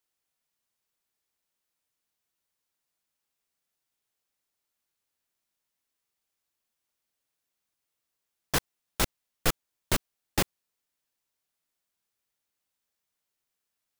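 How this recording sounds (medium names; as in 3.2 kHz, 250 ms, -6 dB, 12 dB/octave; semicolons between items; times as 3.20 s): noise floor -85 dBFS; spectral tilt -3.0 dB/octave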